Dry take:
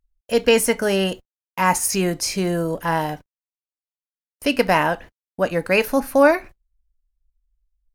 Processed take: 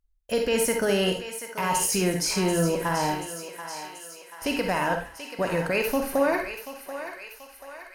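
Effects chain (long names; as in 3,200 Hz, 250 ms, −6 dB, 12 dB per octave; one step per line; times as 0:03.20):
brickwall limiter −14 dBFS, peak gain reduction 10.5 dB
feedback echo with a high-pass in the loop 734 ms, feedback 61%, high-pass 690 Hz, level −9 dB
convolution reverb RT60 0.35 s, pre-delay 38 ms, DRR 4 dB
level −2.5 dB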